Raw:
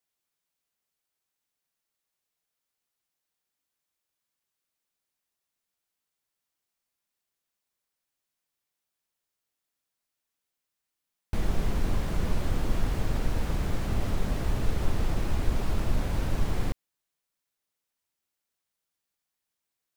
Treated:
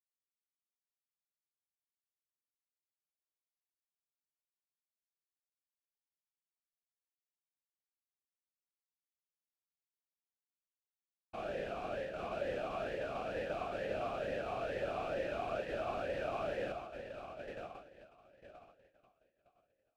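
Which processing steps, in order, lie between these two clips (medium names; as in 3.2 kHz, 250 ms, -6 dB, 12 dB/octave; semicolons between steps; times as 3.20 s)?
echo that smears into a reverb 1073 ms, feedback 53%, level -5 dB; expander -24 dBFS; talking filter a-e 2.2 Hz; trim +8.5 dB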